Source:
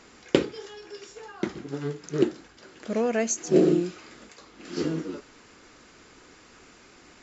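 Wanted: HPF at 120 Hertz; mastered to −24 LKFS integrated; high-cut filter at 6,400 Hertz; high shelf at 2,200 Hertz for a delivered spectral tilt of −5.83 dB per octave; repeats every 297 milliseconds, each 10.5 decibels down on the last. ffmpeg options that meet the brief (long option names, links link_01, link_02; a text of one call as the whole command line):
ffmpeg -i in.wav -af "highpass=120,lowpass=6400,highshelf=frequency=2200:gain=-7,aecho=1:1:297|594|891:0.299|0.0896|0.0269,volume=4dB" out.wav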